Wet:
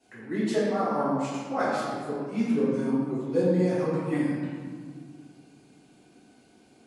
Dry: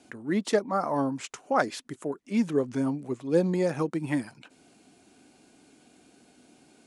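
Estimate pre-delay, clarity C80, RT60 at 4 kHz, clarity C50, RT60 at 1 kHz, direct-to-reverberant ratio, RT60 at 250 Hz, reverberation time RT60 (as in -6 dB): 3 ms, 0.0 dB, 1.2 s, -2.5 dB, 1.7 s, -13.5 dB, 2.7 s, 1.8 s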